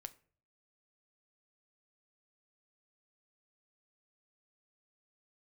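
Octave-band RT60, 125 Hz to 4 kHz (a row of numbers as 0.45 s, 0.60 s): 0.75 s, 0.60 s, 0.55 s, 0.40 s, 0.40 s, 0.30 s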